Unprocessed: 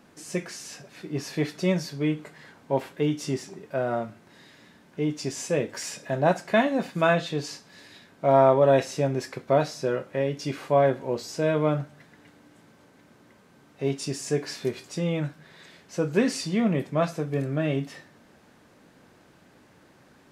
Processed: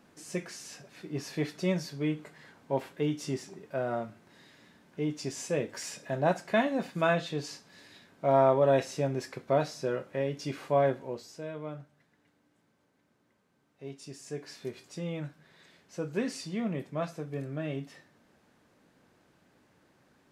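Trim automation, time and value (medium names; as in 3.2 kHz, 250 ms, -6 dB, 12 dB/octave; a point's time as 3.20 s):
10.89 s -5 dB
11.49 s -16 dB
13.86 s -16 dB
14.84 s -9 dB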